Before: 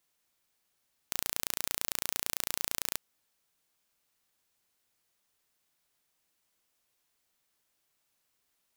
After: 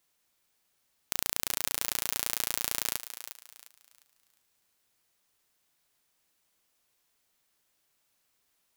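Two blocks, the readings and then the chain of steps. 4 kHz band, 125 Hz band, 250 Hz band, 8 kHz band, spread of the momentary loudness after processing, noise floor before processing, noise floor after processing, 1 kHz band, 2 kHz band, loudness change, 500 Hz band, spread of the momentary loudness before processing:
+3.0 dB, +2.5 dB, +2.5 dB, +3.0 dB, 13 LU, -78 dBFS, -75 dBFS, +3.0 dB, +3.0 dB, +2.5 dB, +2.5 dB, 4 LU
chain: thinning echo 0.354 s, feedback 32%, high-pass 500 Hz, level -11 dB; gain +2.5 dB

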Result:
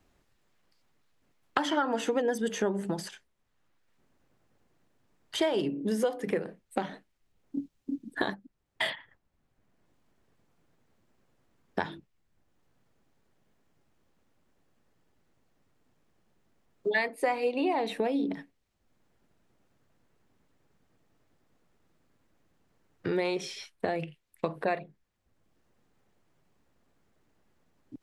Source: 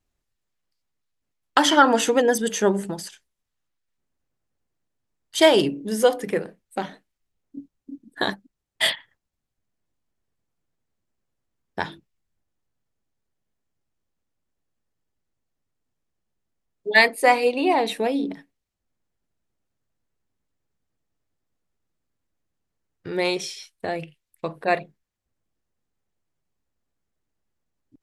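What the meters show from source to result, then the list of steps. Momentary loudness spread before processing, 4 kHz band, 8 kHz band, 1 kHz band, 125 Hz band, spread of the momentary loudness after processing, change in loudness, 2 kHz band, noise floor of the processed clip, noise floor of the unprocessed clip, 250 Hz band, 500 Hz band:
17 LU, -12.5 dB, -13.5 dB, -10.5 dB, -4.5 dB, 11 LU, -10.5 dB, -11.0 dB, -75 dBFS, -81 dBFS, -6.0 dB, -8.5 dB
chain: compressor 3:1, threshold -30 dBFS, peak gain reduction 15.5 dB; high shelf 3800 Hz -10.5 dB; three-band squash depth 40%; gain +2.5 dB

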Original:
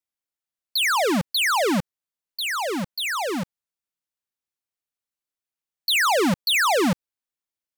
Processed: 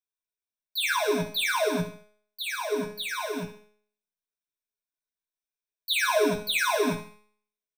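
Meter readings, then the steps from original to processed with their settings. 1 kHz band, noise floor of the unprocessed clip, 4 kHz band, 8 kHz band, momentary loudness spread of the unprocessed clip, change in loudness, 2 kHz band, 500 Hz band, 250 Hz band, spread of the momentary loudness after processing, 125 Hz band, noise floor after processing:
-6.5 dB, under -85 dBFS, -6.0 dB, -6.0 dB, 11 LU, -5.0 dB, -5.0 dB, -2.0 dB, -7.5 dB, 12 LU, -5.5 dB, under -85 dBFS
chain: ripple EQ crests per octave 1.6, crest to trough 15 dB; on a send: feedback echo 71 ms, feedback 34%, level -14 dB; on the sum: chorus voices 4, 0.46 Hz, delay 16 ms, depth 4.2 ms; resonator 210 Hz, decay 0.57 s, harmonics all, mix 80%; gain +5.5 dB

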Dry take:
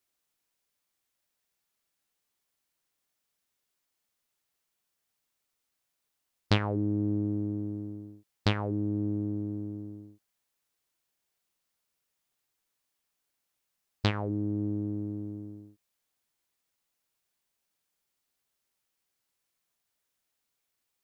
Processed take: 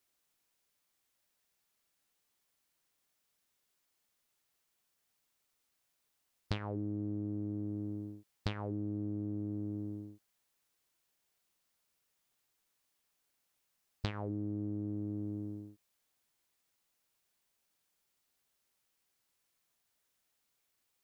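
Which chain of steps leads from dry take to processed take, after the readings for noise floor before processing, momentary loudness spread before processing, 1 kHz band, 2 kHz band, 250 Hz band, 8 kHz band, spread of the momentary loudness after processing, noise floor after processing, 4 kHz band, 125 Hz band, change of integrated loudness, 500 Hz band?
-82 dBFS, 15 LU, -10.0 dB, -11.5 dB, -6.5 dB, n/a, 7 LU, -81 dBFS, -12.0 dB, -7.5 dB, -8.0 dB, -7.5 dB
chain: compressor 10:1, threshold -35 dBFS, peak gain reduction 16 dB; gain +1.5 dB

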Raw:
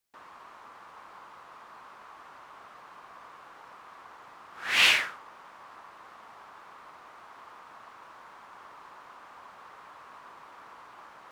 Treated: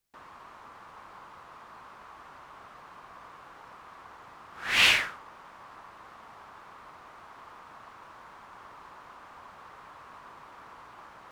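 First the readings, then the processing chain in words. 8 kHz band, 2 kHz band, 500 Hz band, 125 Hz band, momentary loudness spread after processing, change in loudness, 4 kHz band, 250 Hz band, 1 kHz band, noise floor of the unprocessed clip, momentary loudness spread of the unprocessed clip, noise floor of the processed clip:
0.0 dB, 0.0 dB, +1.0 dB, n/a, 18 LU, 0.0 dB, 0.0 dB, +3.5 dB, +0.5 dB, -52 dBFS, 18 LU, -51 dBFS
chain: low shelf 160 Hz +11.5 dB

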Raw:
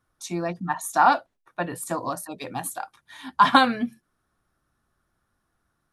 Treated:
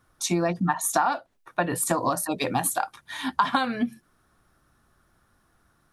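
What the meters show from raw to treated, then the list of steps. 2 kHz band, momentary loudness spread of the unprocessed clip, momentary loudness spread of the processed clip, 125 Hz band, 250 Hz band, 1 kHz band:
-3.0 dB, 18 LU, 8 LU, +4.5 dB, +1.0 dB, -4.0 dB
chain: compressor 10:1, threshold -29 dBFS, peak gain reduction 18 dB; gain +9 dB

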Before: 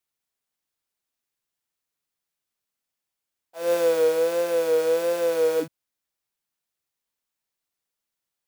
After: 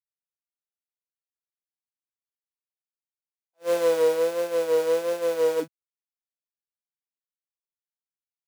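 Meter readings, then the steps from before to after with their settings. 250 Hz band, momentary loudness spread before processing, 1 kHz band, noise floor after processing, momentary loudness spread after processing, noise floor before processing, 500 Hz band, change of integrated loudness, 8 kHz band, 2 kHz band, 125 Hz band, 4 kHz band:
-2.0 dB, 7 LU, -0.5 dB, under -85 dBFS, 8 LU, under -85 dBFS, -1.5 dB, -1.0 dB, -2.5 dB, -2.0 dB, n/a, -1.5 dB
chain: self-modulated delay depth 0.11 ms; expander -20 dBFS

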